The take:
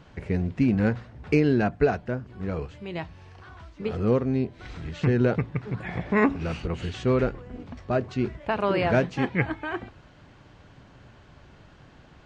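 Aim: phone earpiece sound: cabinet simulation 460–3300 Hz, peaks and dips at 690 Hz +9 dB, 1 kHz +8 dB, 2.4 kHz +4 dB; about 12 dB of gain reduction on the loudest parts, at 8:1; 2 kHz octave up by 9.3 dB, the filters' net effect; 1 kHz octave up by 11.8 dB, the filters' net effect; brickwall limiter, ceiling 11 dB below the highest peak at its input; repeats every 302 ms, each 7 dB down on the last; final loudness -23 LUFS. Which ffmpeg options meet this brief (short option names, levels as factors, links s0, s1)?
-af "equalizer=f=1000:t=o:g=5,equalizer=f=2000:t=o:g=8,acompressor=threshold=0.0501:ratio=8,alimiter=level_in=1.12:limit=0.0631:level=0:latency=1,volume=0.891,highpass=460,equalizer=f=690:t=q:w=4:g=9,equalizer=f=1000:t=q:w=4:g=8,equalizer=f=2400:t=q:w=4:g=4,lowpass=f=3300:w=0.5412,lowpass=f=3300:w=1.3066,aecho=1:1:302|604|906|1208|1510:0.447|0.201|0.0905|0.0407|0.0183,volume=4.22"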